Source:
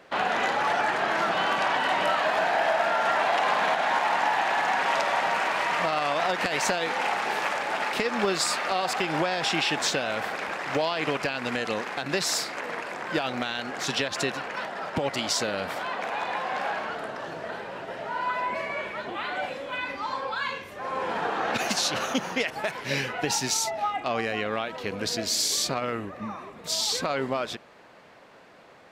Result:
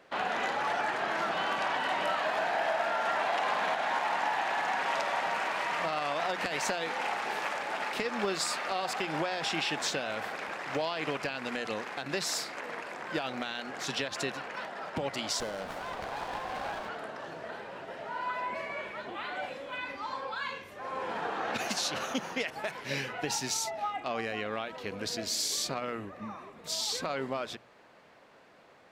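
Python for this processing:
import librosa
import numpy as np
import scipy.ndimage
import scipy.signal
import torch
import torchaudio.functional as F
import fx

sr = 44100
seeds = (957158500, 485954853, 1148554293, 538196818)

y = fx.hum_notches(x, sr, base_hz=60, count=3)
y = fx.running_max(y, sr, window=9, at=(15.4, 16.89))
y = y * 10.0 ** (-6.0 / 20.0)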